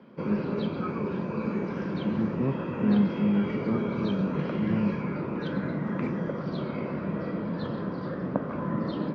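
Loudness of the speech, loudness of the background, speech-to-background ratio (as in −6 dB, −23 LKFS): −29.0 LKFS, −31.5 LKFS, 2.5 dB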